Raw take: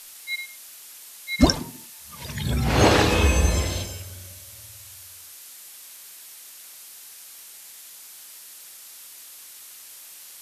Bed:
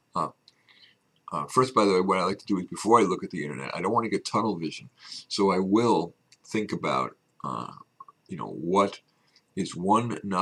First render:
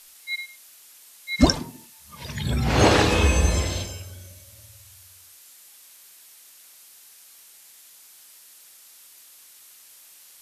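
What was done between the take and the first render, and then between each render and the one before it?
noise print and reduce 6 dB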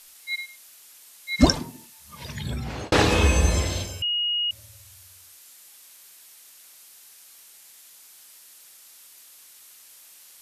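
2.16–2.92 s: fade out; 4.02–4.51 s: bleep 2.88 kHz -22 dBFS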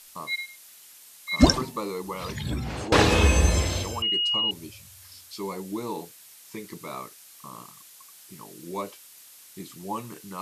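add bed -10.5 dB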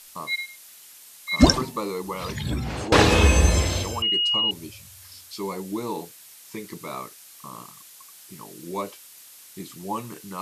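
trim +2.5 dB; peak limiter -1 dBFS, peak gain reduction 1 dB

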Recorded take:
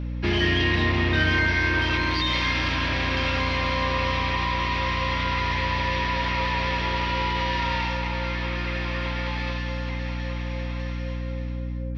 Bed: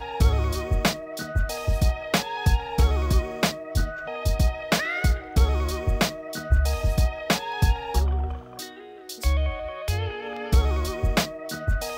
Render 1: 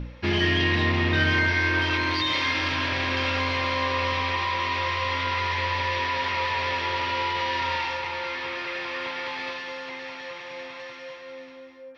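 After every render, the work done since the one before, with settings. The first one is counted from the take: de-hum 60 Hz, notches 11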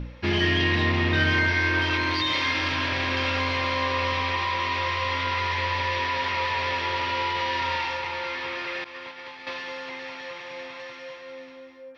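8.84–9.47 s: expander -26 dBFS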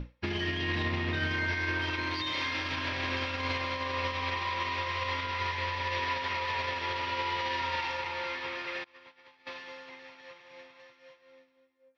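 peak limiter -21.5 dBFS, peak gain reduction 10 dB; upward expansion 2.5:1, over -47 dBFS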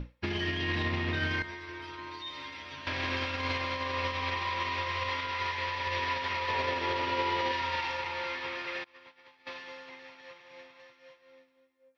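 1.42–2.87 s: inharmonic resonator 69 Hz, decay 0.4 s, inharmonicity 0.002; 5.09–5.87 s: bass shelf 200 Hz -6.5 dB; 6.48–7.52 s: peaking EQ 350 Hz +7.5 dB 2 oct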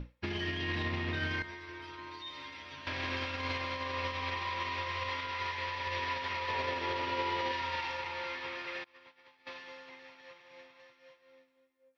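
trim -3.5 dB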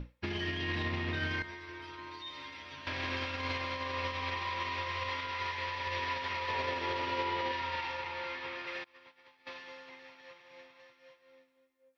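7.23–8.67 s: distance through air 59 m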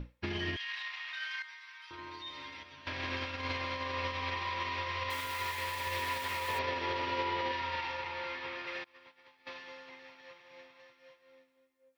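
0.56–1.91 s: Bessel high-pass 1.6 kHz, order 6; 2.63–3.58 s: upward expansion, over -45 dBFS; 5.10–6.59 s: zero-crossing glitches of -38.5 dBFS

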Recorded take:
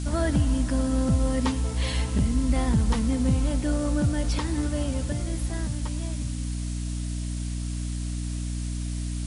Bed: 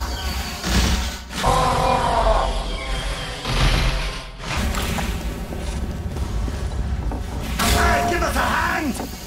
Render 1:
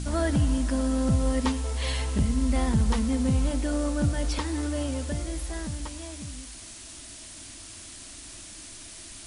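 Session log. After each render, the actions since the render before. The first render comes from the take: de-hum 60 Hz, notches 5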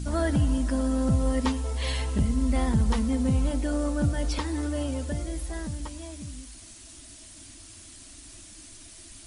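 noise reduction 6 dB, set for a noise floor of -44 dBFS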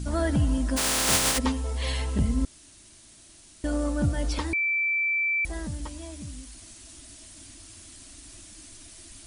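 0.76–1.37 s: spectral contrast reduction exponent 0.19; 2.45–3.64 s: room tone; 4.53–5.45 s: bleep 2.33 kHz -22.5 dBFS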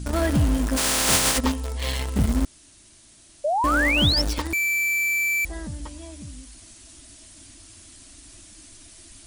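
in parallel at -8 dB: bit crusher 4-bit; 3.44–4.22 s: on the sum: painted sound rise 560–5600 Hz -22 dBFS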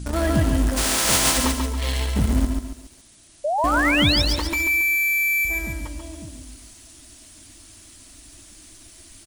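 on a send: delay 137 ms -11 dB; on the sum: bit-crushed delay 140 ms, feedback 35%, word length 8-bit, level -5.5 dB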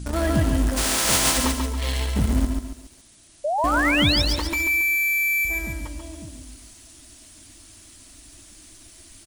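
trim -1 dB

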